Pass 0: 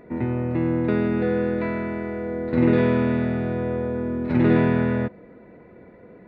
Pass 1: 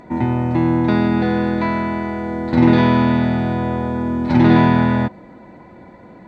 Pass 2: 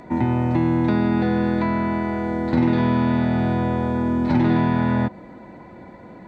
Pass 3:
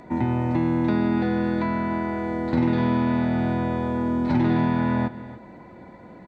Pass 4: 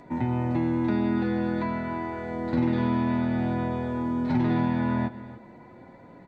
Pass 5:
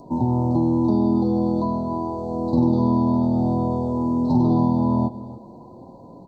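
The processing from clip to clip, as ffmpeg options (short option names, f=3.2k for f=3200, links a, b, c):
-af "superequalizer=7b=0.398:9b=2.24:13b=2.24:14b=3.55:15b=3.98,volume=6.5dB"
-filter_complex "[0:a]acrossover=split=310|1900[a][b][c];[a]acompressor=threshold=-18dB:ratio=4[d];[b]acompressor=threshold=-24dB:ratio=4[e];[c]acompressor=threshold=-41dB:ratio=4[f];[d][e][f]amix=inputs=3:normalize=0"
-af "aecho=1:1:288:0.168,volume=-3dB"
-af "flanger=delay=7.1:depth=2.2:regen=-45:speed=0.49:shape=triangular"
-af "asuperstop=centerf=2100:order=12:qfactor=0.68,volume=6dB"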